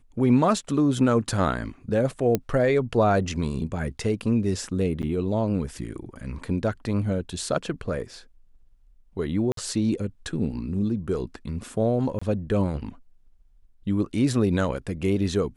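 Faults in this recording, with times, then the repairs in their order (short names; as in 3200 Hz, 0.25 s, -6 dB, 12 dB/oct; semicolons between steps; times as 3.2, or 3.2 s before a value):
2.35 pop -9 dBFS
5.02–5.03 gap 9 ms
9.52–9.57 gap 53 ms
12.19–12.21 gap 25 ms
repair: de-click; interpolate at 5.02, 9 ms; interpolate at 9.52, 53 ms; interpolate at 12.19, 25 ms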